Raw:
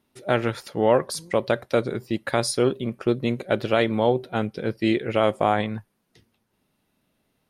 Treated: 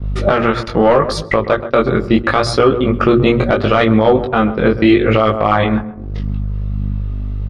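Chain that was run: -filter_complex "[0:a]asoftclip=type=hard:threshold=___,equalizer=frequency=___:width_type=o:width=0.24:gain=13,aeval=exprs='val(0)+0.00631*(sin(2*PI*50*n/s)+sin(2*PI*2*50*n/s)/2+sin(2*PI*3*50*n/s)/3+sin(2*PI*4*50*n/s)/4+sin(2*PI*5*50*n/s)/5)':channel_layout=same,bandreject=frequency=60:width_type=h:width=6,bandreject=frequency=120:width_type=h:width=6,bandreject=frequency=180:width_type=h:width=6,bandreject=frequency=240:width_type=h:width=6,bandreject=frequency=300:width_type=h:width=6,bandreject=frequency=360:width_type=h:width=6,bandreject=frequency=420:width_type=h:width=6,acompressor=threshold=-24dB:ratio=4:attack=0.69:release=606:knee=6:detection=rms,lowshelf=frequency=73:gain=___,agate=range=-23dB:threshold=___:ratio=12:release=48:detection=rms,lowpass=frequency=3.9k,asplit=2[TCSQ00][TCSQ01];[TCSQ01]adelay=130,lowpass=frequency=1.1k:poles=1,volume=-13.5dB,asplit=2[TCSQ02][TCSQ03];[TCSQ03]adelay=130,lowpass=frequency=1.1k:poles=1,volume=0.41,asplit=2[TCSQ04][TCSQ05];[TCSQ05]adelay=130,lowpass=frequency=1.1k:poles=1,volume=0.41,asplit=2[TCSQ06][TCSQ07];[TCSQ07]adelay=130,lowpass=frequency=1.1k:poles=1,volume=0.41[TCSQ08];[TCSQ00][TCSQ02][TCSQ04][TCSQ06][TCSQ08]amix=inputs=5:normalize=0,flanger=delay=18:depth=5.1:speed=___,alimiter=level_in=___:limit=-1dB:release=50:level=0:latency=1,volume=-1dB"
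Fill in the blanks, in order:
-10dB, 1.2k, 5, -44dB, 0.76, 26.5dB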